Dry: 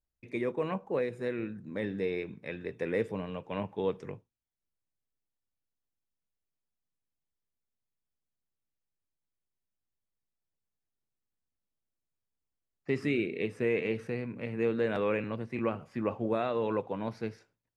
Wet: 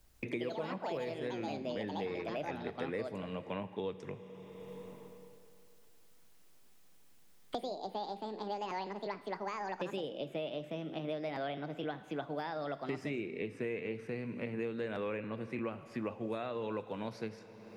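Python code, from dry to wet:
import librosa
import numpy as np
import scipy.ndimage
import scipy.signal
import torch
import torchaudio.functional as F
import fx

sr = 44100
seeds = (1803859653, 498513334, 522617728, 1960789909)

y = fx.rev_schroeder(x, sr, rt60_s=2.3, comb_ms=33, drr_db=15.5)
y = fx.echo_pitch(y, sr, ms=156, semitones=5, count=2, db_per_echo=-3.0)
y = fx.band_squash(y, sr, depth_pct=100)
y = y * librosa.db_to_amplitude(-7.0)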